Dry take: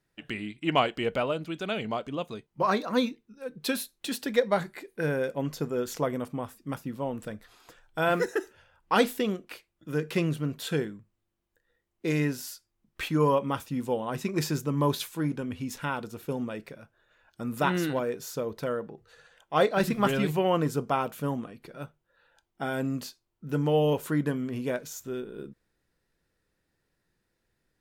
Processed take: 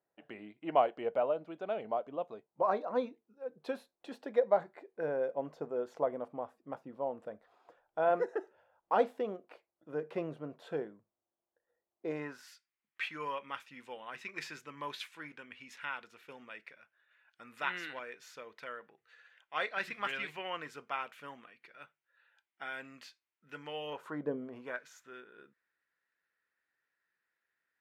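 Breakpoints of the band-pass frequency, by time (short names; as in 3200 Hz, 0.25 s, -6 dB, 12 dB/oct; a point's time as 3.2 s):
band-pass, Q 2
12.11 s 670 Hz
12.52 s 2100 Hz
23.85 s 2100 Hz
24.34 s 450 Hz
24.79 s 1700 Hz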